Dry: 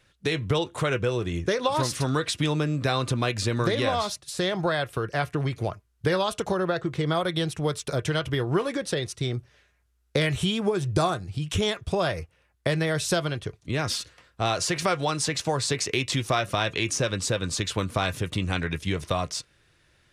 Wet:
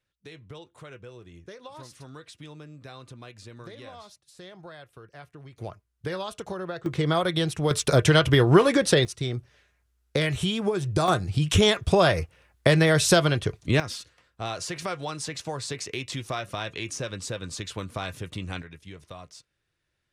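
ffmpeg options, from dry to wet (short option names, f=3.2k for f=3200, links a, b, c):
-af "asetnsamples=n=441:p=0,asendcmd='5.58 volume volume -8dB;6.86 volume volume 1.5dB;7.71 volume volume 8dB;9.05 volume volume -1dB;11.08 volume volume 6dB;13.8 volume volume -7dB;18.62 volume volume -16dB',volume=-19dB"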